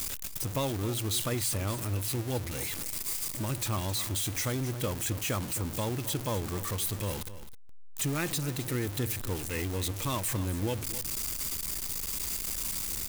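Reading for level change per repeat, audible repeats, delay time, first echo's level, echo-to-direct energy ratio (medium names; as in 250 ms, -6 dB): no regular repeats, 1, 263 ms, -14.0 dB, -14.0 dB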